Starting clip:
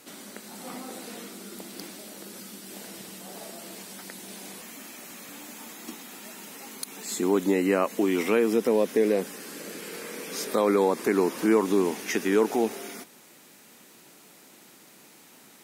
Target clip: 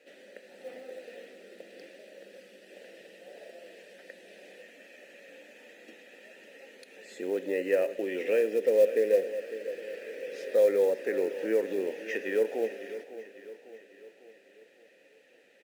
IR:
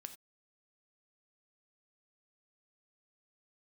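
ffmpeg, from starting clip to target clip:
-filter_complex "[0:a]asplit=3[a][b][c];[a]bandpass=f=530:t=q:w=8,volume=0dB[d];[b]bandpass=f=1.84k:t=q:w=8,volume=-6dB[e];[c]bandpass=f=2.48k:t=q:w=8,volume=-9dB[f];[d][e][f]amix=inputs=3:normalize=0,acrusher=bits=7:mode=log:mix=0:aa=0.000001,aecho=1:1:551|1102|1653|2204|2755:0.2|0.102|0.0519|0.0265|0.0135,asplit=2[g][h];[1:a]atrim=start_sample=2205,asetrate=34398,aresample=44100[i];[h][i]afir=irnorm=-1:irlink=0,volume=3.5dB[j];[g][j]amix=inputs=2:normalize=0"

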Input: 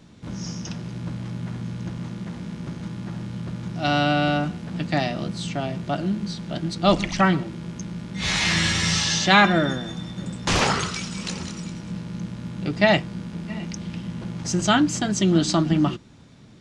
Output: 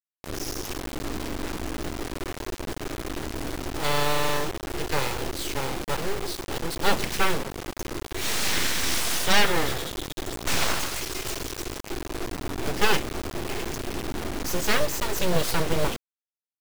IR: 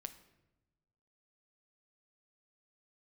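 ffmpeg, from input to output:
-filter_complex "[0:a]asettb=1/sr,asplit=3[a][b][c];[a]atrim=end=12.224[d];[b]atrim=start=12.22:end=14.53,asetpts=PTS-STARTPTS,afade=t=in:d=0.004:c=qsin,afade=t=out:st=2.306:d=0.004:c=qsin,lowshelf=f=75:g=11[e];[c]atrim=start=14.526[f];[d][e]acrossfade=d=0.004:c1=hsin:c2=qsin[g];[g][f]acrossfade=d=0.004:c1=qsin:c2=hsin,aeval=exprs='0.708*(cos(1*acos(clip(val(0)/0.708,-1,1)))-cos(1*PI/2))+0.01*(cos(8*acos(clip(val(0)/0.708,-1,1)))-cos(8*PI/2))':c=same,aeval=exprs='abs(val(0))':c=same,acrusher=bits=4:mix=0:aa=0.000001,volume=-1.5dB"

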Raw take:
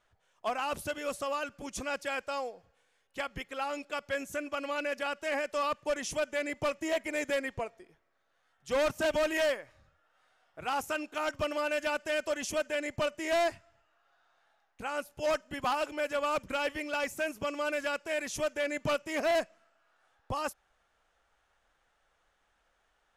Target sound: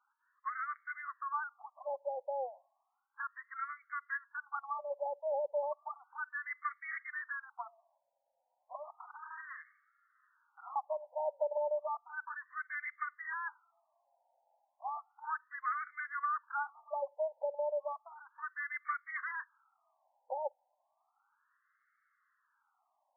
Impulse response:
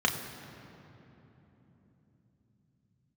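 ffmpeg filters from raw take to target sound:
-filter_complex "[0:a]asettb=1/sr,asplit=3[a][b][c];[a]atrim=end=8.754[d];[b]atrim=start=8.75:end=10.76,asetpts=PTS-STARTPTS,afade=t=in:d=0.004:c=qsin,afade=t=out:st=2.006:d=0.004:c=qsin,aeval=exprs='0.0168*(abs(mod(val(0)/0.0168+3,4)-2)-1)':c=same[e];[c]atrim=start=10.756[f];[d][e]acrossfade=d=0.004:c1=hsin:c2=qsin[g];[g][f]acrossfade=d=0.004:c1=qsin:c2=hsin,afftfilt=real='re*between(b*sr/1024,690*pow(1600/690,0.5+0.5*sin(2*PI*0.33*pts/sr))/1.41,690*pow(1600/690,0.5+0.5*sin(2*PI*0.33*pts/sr))*1.41)':imag='im*between(b*sr/1024,690*pow(1600/690,0.5+0.5*sin(2*PI*0.33*pts/sr))/1.41,690*pow(1600/690,0.5+0.5*sin(2*PI*0.33*pts/sr))*1.41)':win_size=1024:overlap=0.75"

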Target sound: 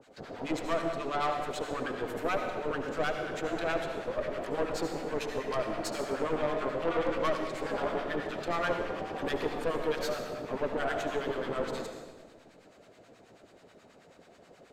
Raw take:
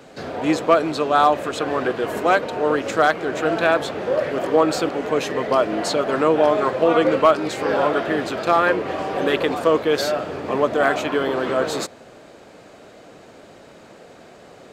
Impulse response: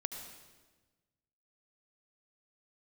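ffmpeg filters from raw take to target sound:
-filter_complex "[0:a]acrossover=split=920[a][b];[a]aeval=exprs='val(0)*(1-1/2+1/2*cos(2*PI*9.3*n/s))':c=same[c];[b]aeval=exprs='val(0)*(1-1/2-1/2*cos(2*PI*9.3*n/s))':c=same[d];[c][d]amix=inputs=2:normalize=0,aeval=exprs='(tanh(8.91*val(0)+0.65)-tanh(0.65))/8.91':c=same[e];[1:a]atrim=start_sample=2205[f];[e][f]afir=irnorm=-1:irlink=0,volume=-4dB"

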